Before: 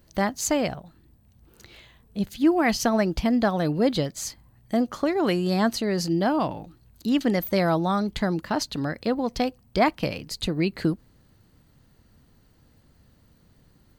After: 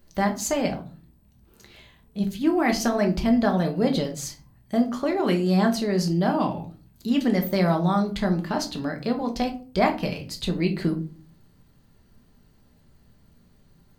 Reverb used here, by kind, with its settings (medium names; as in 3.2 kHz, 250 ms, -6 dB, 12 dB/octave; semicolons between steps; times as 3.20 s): simulated room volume 210 m³, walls furnished, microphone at 1.2 m; trim -2.5 dB